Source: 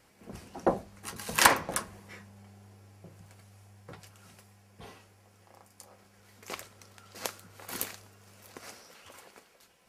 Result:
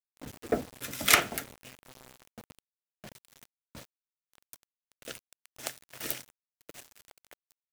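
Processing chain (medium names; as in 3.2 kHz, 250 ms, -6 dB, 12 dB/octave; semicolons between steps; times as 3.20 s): peaking EQ 810 Hz -9.5 dB 0.5 oct; tape speed +28%; rotary cabinet horn 0.8 Hz, later 6 Hz, at 6.74 s; bit crusher 8-bit; trim +3 dB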